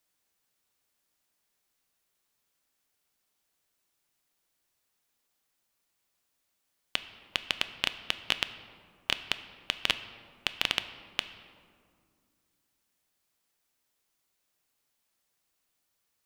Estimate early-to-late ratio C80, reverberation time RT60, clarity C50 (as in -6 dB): 13.5 dB, 2.1 s, 12.5 dB